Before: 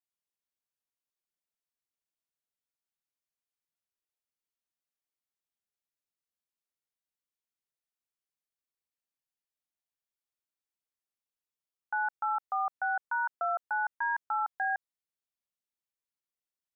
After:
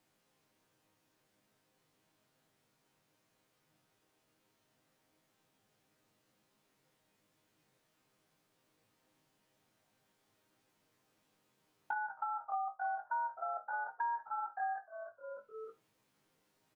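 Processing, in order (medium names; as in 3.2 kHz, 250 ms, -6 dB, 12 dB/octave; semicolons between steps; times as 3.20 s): spectrogram pixelated in time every 50 ms; tilt EQ -3.5 dB/octave; chord resonator G#2 major, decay 0.21 s; frequency-shifting echo 305 ms, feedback 33%, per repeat -110 Hz, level -18 dB; three bands compressed up and down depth 100%; trim +6 dB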